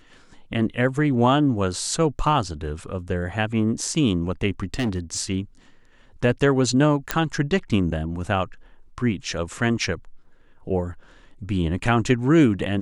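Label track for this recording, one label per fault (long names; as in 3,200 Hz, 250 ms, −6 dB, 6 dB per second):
4.600000	5.190000	clipping −20 dBFS
7.110000	7.110000	click −4 dBFS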